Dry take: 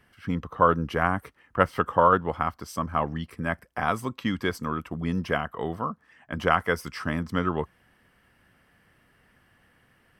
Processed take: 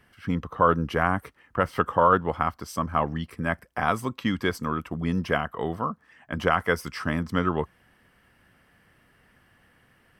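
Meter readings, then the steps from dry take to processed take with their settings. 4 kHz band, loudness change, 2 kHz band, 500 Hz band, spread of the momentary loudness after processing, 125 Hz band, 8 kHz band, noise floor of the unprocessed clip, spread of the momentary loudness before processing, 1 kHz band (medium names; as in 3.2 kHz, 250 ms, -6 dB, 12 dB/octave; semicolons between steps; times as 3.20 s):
+1.0 dB, +0.5 dB, +1.0 dB, +0.5 dB, 10 LU, +1.5 dB, +1.5 dB, -64 dBFS, 11 LU, 0.0 dB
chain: loudness maximiser +7 dB; trim -5.5 dB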